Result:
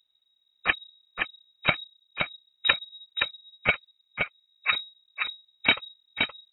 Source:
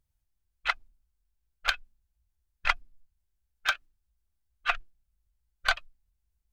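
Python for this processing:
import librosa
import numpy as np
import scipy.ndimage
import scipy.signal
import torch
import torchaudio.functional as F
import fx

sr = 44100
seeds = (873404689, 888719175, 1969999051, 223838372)

p1 = fx.env_lowpass_down(x, sr, base_hz=530.0, full_db=-44.0, at=(1.73, 2.68), fade=0.02)
p2 = fx.fixed_phaser(p1, sr, hz=1600.0, stages=4, at=(3.7, 4.73), fade=0.02)
p3 = p2 + fx.echo_feedback(p2, sr, ms=521, feedback_pct=22, wet_db=-5, dry=0)
p4 = fx.freq_invert(p3, sr, carrier_hz=3800)
y = p4 * librosa.db_to_amplitude(4.0)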